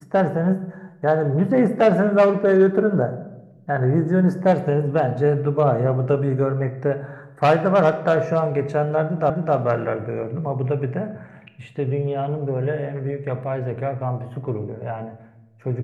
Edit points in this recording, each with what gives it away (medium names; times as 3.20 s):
9.30 s: repeat of the last 0.26 s